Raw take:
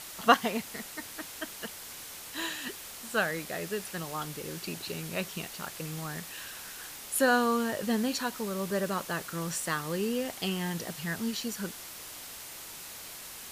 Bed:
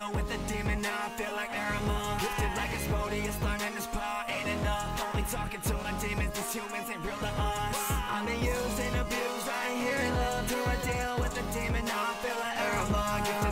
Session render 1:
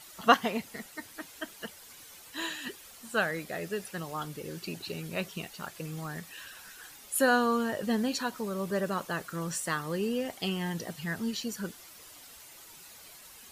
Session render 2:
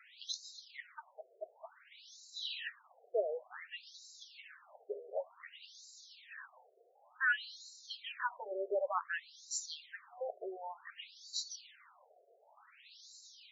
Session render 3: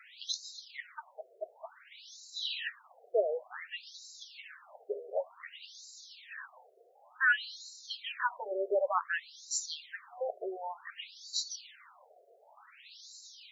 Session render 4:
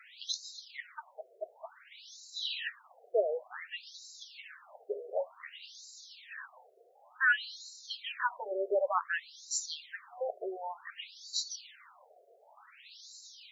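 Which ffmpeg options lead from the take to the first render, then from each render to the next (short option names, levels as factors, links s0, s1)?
-af "afftdn=nr=10:nf=-45"
-filter_complex "[0:a]acrossover=split=240[s0][s1];[s0]aeval=exprs='clip(val(0),-1,0.00891)':c=same[s2];[s2][s1]amix=inputs=2:normalize=0,afftfilt=real='re*between(b*sr/1024,500*pow(5400/500,0.5+0.5*sin(2*PI*0.55*pts/sr))/1.41,500*pow(5400/500,0.5+0.5*sin(2*PI*0.55*pts/sr))*1.41)':imag='im*between(b*sr/1024,500*pow(5400/500,0.5+0.5*sin(2*PI*0.55*pts/sr))/1.41,500*pow(5400/500,0.5+0.5*sin(2*PI*0.55*pts/sr))*1.41)':win_size=1024:overlap=0.75"
-af "volume=1.78"
-filter_complex "[0:a]asettb=1/sr,asplit=3[s0][s1][s2];[s0]atrim=end=4.954[s3];[s1]atrim=start=4.95:end=5.76,asetpts=PTS-STARTPTS,afade=t=in:d=0.004:c=qsin,afade=t=out:st=0.806:d=0.004:c=qsin,asplit=2[s4][s5];[s5]adelay=29,volume=0.316[s6];[s4][s6]amix=inputs=2:normalize=0,atrim=end_sample=35721[s7];[s2]atrim=start=5.756[s8];[s3][s7]acrossfade=d=0.004:c1=hsin:c2=qsin[s9];[s9][s8]acrossfade=d=0.004:c1=qsin:c2=hsin"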